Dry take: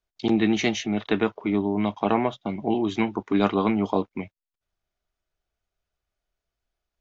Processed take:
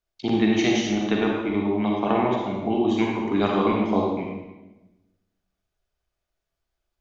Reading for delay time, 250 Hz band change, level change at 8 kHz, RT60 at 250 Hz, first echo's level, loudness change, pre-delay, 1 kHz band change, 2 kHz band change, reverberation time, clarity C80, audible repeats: none, +1.5 dB, n/a, 1.3 s, none, +1.5 dB, 37 ms, +2.0 dB, +1.0 dB, 1.0 s, 2.5 dB, none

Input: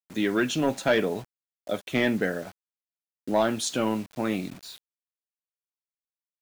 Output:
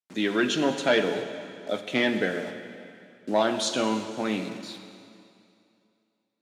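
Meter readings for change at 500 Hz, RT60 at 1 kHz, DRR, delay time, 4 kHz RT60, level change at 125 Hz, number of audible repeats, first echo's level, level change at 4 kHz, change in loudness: +0.5 dB, 2.5 s, 7.0 dB, none, 2.3 s, -3.5 dB, none, none, +4.0 dB, +0.5 dB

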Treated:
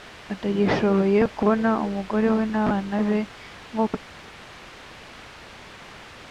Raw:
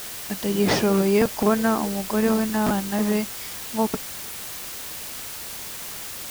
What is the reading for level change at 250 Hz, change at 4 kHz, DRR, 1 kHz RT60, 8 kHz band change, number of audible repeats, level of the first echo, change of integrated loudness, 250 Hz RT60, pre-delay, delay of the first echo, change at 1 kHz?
0.0 dB, -7.5 dB, none, none, under -15 dB, none, none, +1.0 dB, none, none, none, 0.0 dB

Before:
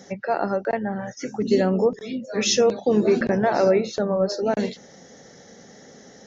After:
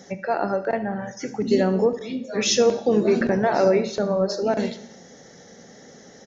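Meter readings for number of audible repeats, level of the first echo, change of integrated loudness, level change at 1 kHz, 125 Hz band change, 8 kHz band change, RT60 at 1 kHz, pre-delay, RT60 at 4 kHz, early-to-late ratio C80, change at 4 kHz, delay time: 1, -18.5 dB, 0.0 dB, 0.0 dB, 0.0 dB, n/a, 0.85 s, 6 ms, 0.80 s, 17.0 dB, +0.5 dB, 73 ms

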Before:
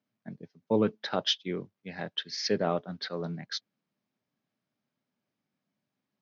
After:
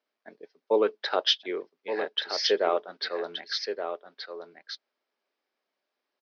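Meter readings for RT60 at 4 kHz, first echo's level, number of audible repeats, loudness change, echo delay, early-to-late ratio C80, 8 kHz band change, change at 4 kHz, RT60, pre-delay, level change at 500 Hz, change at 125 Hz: none, -8.0 dB, 1, +3.0 dB, 1.174 s, none, n/a, +5.0 dB, none, none, +5.0 dB, under -20 dB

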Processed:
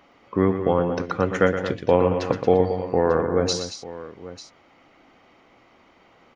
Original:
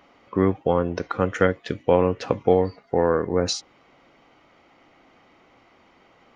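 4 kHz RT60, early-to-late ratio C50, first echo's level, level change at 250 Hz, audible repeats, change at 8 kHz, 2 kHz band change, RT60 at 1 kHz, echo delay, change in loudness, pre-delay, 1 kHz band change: none, none, -9.0 dB, +1.0 dB, 3, n/a, +1.0 dB, none, 0.12 s, +1.0 dB, none, +1.0 dB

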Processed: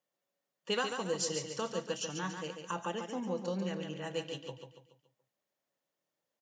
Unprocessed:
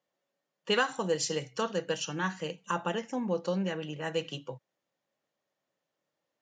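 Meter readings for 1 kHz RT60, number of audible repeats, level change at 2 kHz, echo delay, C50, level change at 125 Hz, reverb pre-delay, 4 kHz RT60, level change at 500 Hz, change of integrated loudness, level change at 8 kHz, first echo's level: none, 4, -7.0 dB, 0.142 s, none, -4.5 dB, none, none, -4.5 dB, -4.5 dB, -1.0 dB, -6.5 dB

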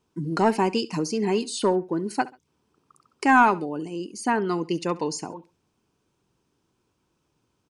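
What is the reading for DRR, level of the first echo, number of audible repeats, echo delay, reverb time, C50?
none, -19.5 dB, 2, 68 ms, none, none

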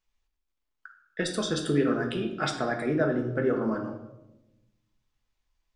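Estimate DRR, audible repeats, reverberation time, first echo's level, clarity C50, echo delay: 1.5 dB, none, 0.95 s, none, 7.5 dB, none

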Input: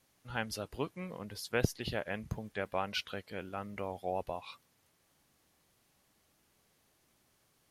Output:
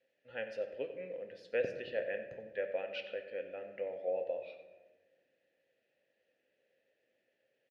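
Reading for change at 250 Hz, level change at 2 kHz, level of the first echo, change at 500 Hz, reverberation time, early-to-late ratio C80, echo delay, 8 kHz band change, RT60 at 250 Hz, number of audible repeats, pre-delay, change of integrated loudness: -12.0 dB, -4.0 dB, -15.0 dB, +3.0 dB, 1.3 s, 9.5 dB, 91 ms, under -20 dB, 2.1 s, 1, 3 ms, -1.5 dB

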